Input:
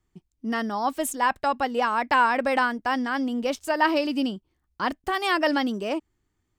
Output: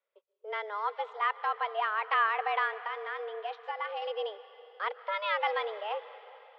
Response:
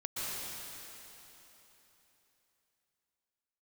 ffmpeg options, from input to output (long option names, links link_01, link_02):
-filter_complex "[0:a]asettb=1/sr,asplit=3[link_01][link_02][link_03];[link_01]atrim=end=2.724[link_04];[link_02]atrim=start=2.72:end=4.02,asetpts=PTS-STARTPTS,afade=type=in:duration=0.004:curve=qsin,afade=type=out:start_time=1.296:duration=0.004:curve=qsin,acompressor=threshold=-26dB:ratio=6[link_05];[link_03]atrim=start=4.016[link_06];[link_04][link_05]acrossfade=duration=0.004:curve1=hsin:curve2=qsin[link_07];[link_07][link_06]acrossfade=duration=0.004:curve1=qsin:curve2=hsin,asplit=2[link_08][link_09];[1:a]atrim=start_sample=2205,asetrate=42777,aresample=44100[link_10];[link_09][link_10]afir=irnorm=-1:irlink=0,volume=-18dB[link_11];[link_08][link_11]amix=inputs=2:normalize=0,highpass=frequency=260:width_type=q:width=0.5412,highpass=frequency=260:width_type=q:width=1.307,lowpass=frequency=3500:width_type=q:width=0.5176,lowpass=frequency=3500:width_type=q:width=0.7071,lowpass=frequency=3500:width_type=q:width=1.932,afreqshift=210,volume=-7.5dB"